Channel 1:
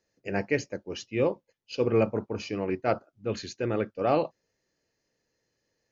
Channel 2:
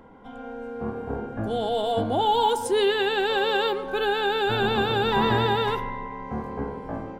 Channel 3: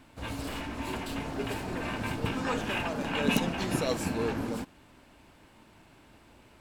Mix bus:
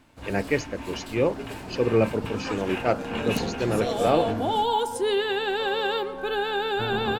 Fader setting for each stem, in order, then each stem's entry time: +2.5, −2.5, −2.0 decibels; 0.00, 2.30, 0.00 seconds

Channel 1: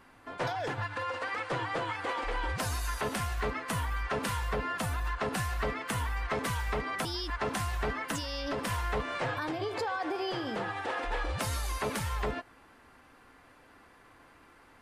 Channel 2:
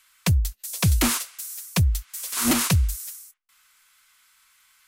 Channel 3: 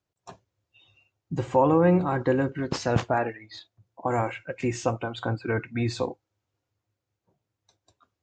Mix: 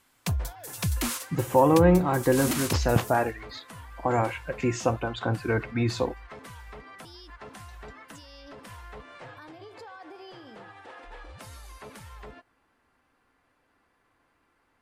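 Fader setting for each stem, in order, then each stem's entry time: −12.0, −8.0, +1.0 decibels; 0.00, 0.00, 0.00 seconds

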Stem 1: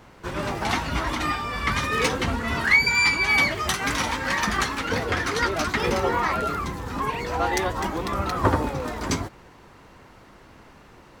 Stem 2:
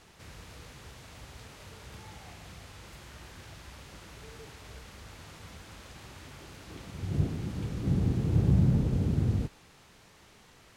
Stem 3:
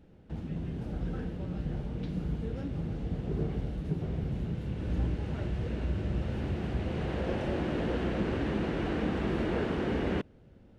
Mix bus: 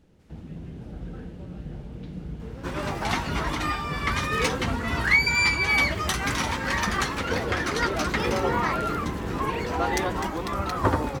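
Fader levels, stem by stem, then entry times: −2.0, −17.0, −2.5 decibels; 2.40, 0.00, 0.00 seconds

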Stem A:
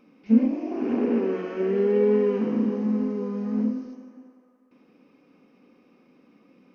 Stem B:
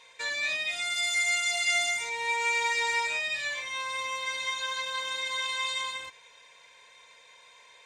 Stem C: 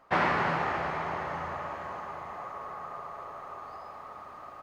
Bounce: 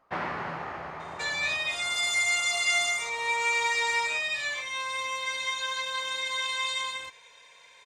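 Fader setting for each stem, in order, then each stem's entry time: muted, +1.0 dB, −6.5 dB; muted, 1.00 s, 0.00 s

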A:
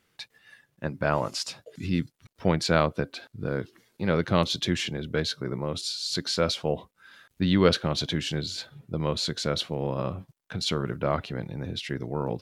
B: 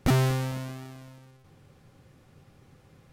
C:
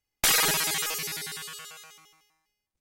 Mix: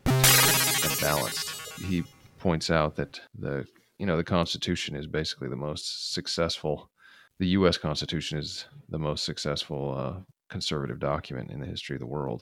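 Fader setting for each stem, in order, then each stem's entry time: −2.0, −1.5, +3.0 decibels; 0.00, 0.00, 0.00 seconds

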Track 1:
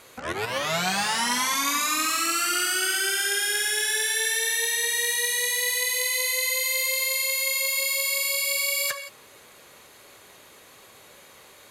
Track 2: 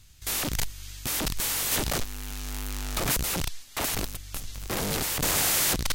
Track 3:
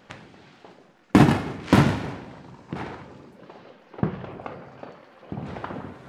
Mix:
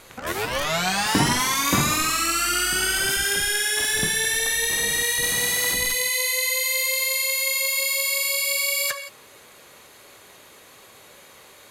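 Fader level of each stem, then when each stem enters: +2.0, −7.5, −7.0 decibels; 0.00, 0.00, 0.00 seconds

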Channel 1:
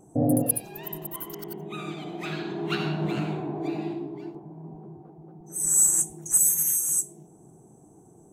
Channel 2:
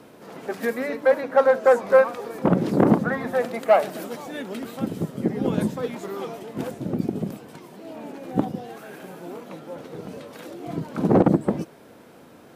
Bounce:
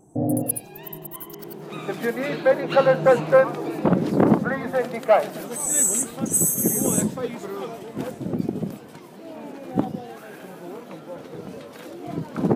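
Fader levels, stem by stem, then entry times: −0.5, 0.0 decibels; 0.00, 1.40 seconds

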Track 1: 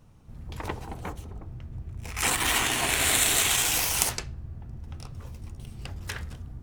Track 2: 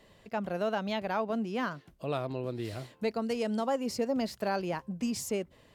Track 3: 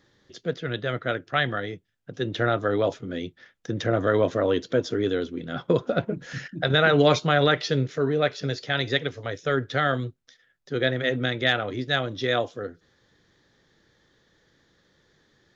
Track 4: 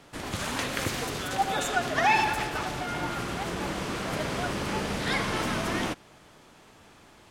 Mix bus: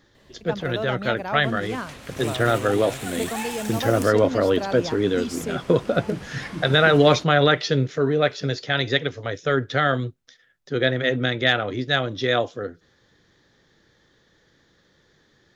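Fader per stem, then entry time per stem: −13.5, +1.5, +3.0, −11.0 decibels; 0.00, 0.15, 0.00, 1.30 seconds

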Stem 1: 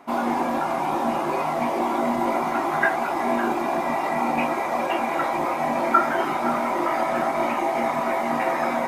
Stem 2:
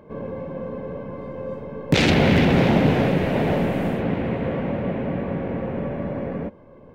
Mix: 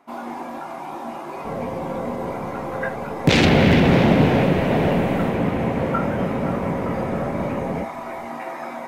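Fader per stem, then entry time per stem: −8.0, +2.0 decibels; 0.00, 1.35 seconds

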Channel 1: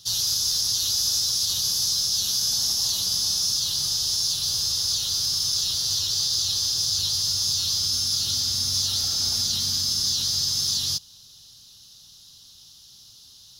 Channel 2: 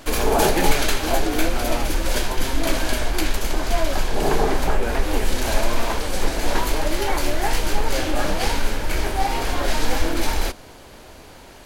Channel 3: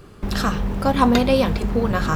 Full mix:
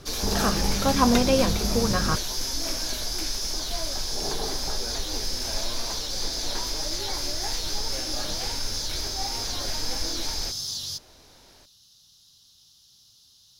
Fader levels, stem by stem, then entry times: −7.5, −12.5, −4.0 decibels; 0.00, 0.00, 0.00 seconds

